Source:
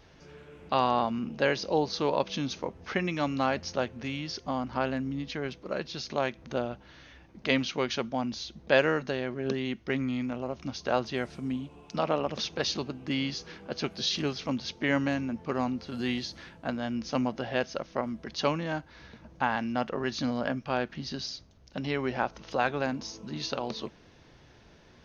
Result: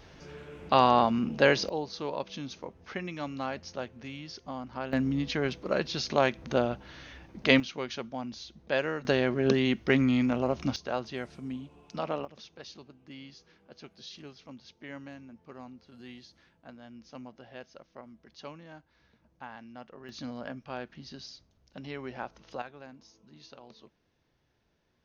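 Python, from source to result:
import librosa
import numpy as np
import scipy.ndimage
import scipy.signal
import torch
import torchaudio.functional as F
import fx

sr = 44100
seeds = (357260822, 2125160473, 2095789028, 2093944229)

y = fx.gain(x, sr, db=fx.steps((0.0, 4.0), (1.69, -7.0), (4.93, 4.5), (7.6, -6.0), (9.05, 6.0), (10.76, -5.0), (12.25, -16.5), (20.09, -9.0), (22.62, -18.0)))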